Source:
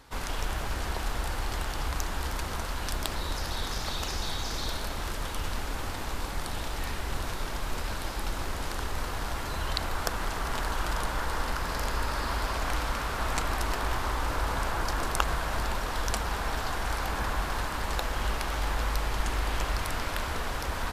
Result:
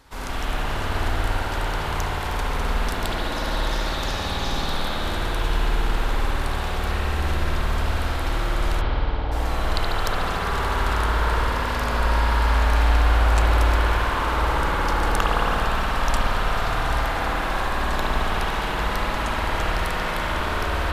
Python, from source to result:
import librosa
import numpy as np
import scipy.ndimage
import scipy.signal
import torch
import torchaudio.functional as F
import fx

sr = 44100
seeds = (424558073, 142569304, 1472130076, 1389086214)

y = fx.steep_lowpass(x, sr, hz=870.0, slope=48, at=(8.8, 9.31), fade=0.02)
y = fx.rev_spring(y, sr, rt60_s=4.0, pass_ms=(54,), chirp_ms=20, drr_db=-7.5)